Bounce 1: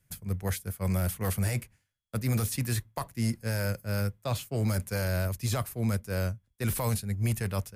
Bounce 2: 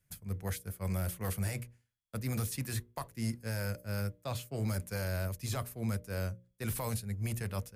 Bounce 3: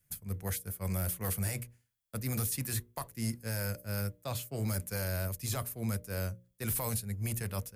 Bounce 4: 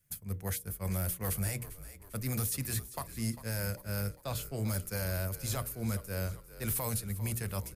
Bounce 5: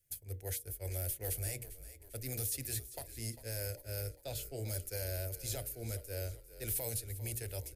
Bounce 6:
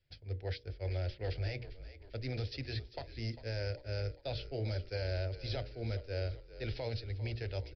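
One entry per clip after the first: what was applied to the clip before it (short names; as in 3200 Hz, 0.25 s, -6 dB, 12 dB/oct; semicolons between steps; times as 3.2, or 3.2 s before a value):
notches 60/120/180/240/300/360/420/480/540/600 Hz; gain -5.5 dB
high shelf 8500 Hz +10 dB
frequency-shifting echo 0.398 s, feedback 53%, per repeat -45 Hz, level -14.5 dB
fixed phaser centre 460 Hz, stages 4; gain -2 dB
downsampling 11025 Hz; gain +4 dB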